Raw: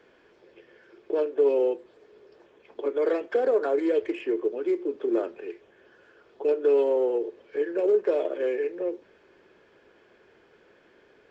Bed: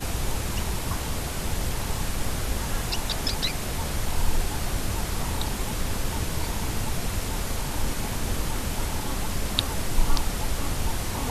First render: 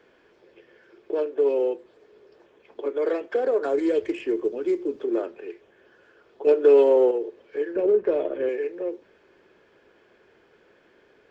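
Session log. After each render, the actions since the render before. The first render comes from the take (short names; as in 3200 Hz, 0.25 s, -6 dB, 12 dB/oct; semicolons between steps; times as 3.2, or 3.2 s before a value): 3.64–5.04 tone controls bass +9 dB, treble +8 dB; 6.47–7.11 gain +6 dB; 7.76–8.49 tone controls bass +13 dB, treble -9 dB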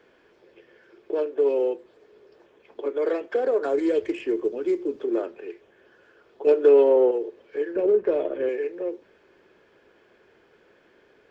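6.69–7.12 LPF 2500 Hz 6 dB/oct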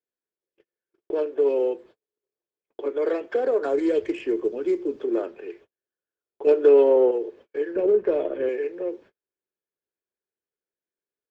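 low shelf 190 Hz +2.5 dB; gate -47 dBFS, range -40 dB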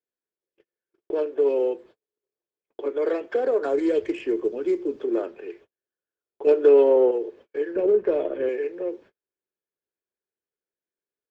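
nothing audible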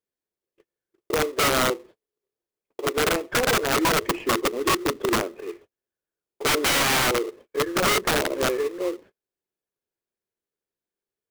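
in parallel at -7.5 dB: sample-rate reducer 1600 Hz, jitter 20%; on the sum: wrapped overs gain 16 dB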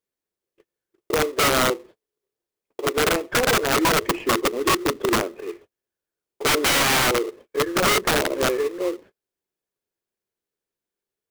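gain +2 dB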